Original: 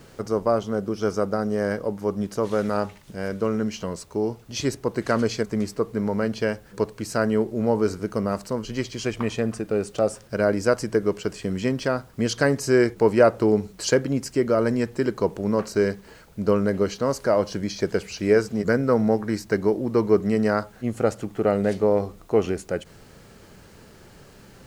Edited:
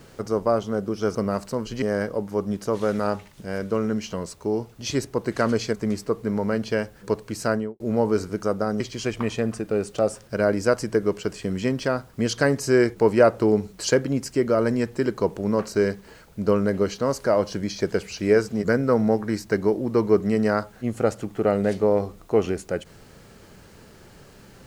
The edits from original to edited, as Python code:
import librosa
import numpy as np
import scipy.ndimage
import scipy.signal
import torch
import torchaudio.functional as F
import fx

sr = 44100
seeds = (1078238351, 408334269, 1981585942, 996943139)

y = fx.studio_fade_out(x, sr, start_s=7.17, length_s=0.33)
y = fx.edit(y, sr, fx.swap(start_s=1.15, length_s=0.37, other_s=8.13, other_length_s=0.67), tone=tone)